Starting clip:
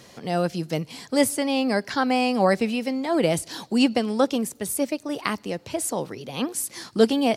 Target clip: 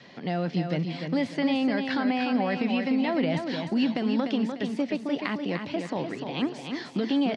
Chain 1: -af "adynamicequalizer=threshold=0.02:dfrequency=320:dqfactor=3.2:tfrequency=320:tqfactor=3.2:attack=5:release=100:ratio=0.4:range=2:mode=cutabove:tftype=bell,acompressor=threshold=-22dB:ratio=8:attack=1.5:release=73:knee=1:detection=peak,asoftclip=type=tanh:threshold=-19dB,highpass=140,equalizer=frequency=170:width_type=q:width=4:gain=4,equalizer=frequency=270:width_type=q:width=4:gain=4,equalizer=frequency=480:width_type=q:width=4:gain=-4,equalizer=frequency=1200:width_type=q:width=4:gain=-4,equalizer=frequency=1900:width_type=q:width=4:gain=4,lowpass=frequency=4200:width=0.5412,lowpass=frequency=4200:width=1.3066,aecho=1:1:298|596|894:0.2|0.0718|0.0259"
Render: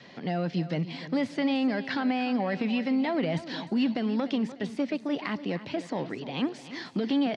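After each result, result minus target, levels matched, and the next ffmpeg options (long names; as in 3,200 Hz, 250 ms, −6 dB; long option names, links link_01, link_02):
soft clipping: distortion +19 dB; echo-to-direct −8 dB
-af "adynamicequalizer=threshold=0.02:dfrequency=320:dqfactor=3.2:tfrequency=320:tqfactor=3.2:attack=5:release=100:ratio=0.4:range=2:mode=cutabove:tftype=bell,acompressor=threshold=-22dB:ratio=8:attack=1.5:release=73:knee=1:detection=peak,asoftclip=type=tanh:threshold=-7.5dB,highpass=140,equalizer=frequency=170:width_type=q:width=4:gain=4,equalizer=frequency=270:width_type=q:width=4:gain=4,equalizer=frequency=480:width_type=q:width=4:gain=-4,equalizer=frequency=1200:width_type=q:width=4:gain=-4,equalizer=frequency=1900:width_type=q:width=4:gain=4,lowpass=frequency=4200:width=0.5412,lowpass=frequency=4200:width=1.3066,aecho=1:1:298|596|894:0.2|0.0718|0.0259"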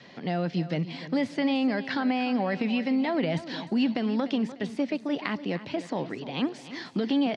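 echo-to-direct −8 dB
-af "adynamicequalizer=threshold=0.02:dfrequency=320:dqfactor=3.2:tfrequency=320:tqfactor=3.2:attack=5:release=100:ratio=0.4:range=2:mode=cutabove:tftype=bell,acompressor=threshold=-22dB:ratio=8:attack=1.5:release=73:knee=1:detection=peak,asoftclip=type=tanh:threshold=-7.5dB,highpass=140,equalizer=frequency=170:width_type=q:width=4:gain=4,equalizer=frequency=270:width_type=q:width=4:gain=4,equalizer=frequency=480:width_type=q:width=4:gain=-4,equalizer=frequency=1200:width_type=q:width=4:gain=-4,equalizer=frequency=1900:width_type=q:width=4:gain=4,lowpass=frequency=4200:width=0.5412,lowpass=frequency=4200:width=1.3066,aecho=1:1:298|596|894|1192:0.501|0.18|0.065|0.0234"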